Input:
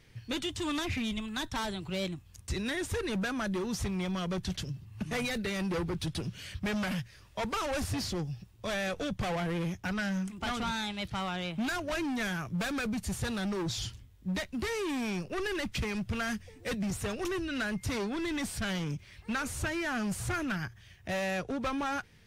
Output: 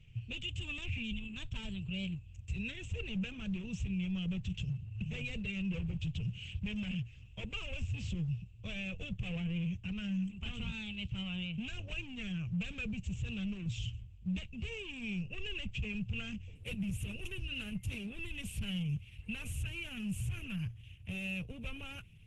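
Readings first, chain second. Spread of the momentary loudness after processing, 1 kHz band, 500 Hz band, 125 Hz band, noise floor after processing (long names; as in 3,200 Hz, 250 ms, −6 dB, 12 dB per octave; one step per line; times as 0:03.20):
6 LU, −22.5 dB, −16.5 dB, 0.0 dB, −53 dBFS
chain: drawn EQ curve 120 Hz 0 dB, 190 Hz −6 dB, 310 Hz −25 dB, 470 Hz −15 dB, 750 Hz −27 dB, 1,900 Hz −22 dB, 2,700 Hz +2 dB, 4,500 Hz −27 dB, 8,700 Hz −10 dB, 15,000 Hz +2 dB
brickwall limiter −34 dBFS, peak gain reduction 9 dB
level +5 dB
Opus 12 kbit/s 48,000 Hz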